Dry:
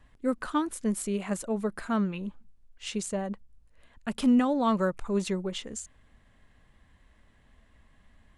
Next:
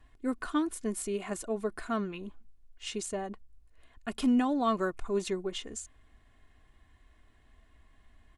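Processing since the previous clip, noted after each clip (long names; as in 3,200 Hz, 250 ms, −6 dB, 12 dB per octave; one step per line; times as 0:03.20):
comb filter 2.8 ms, depth 51%
level −3 dB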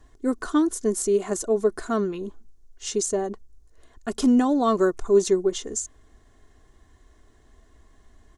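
graphic EQ with 15 bands 400 Hz +8 dB, 2,500 Hz −9 dB, 6,300 Hz +10 dB
level +5.5 dB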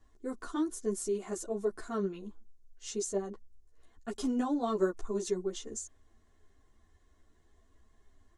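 string-ensemble chorus
level −7.5 dB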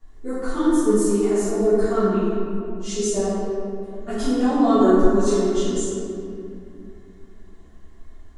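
convolution reverb RT60 2.5 s, pre-delay 4 ms, DRR −14 dB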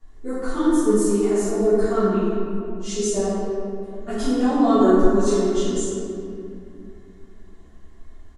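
downsampling to 32,000 Hz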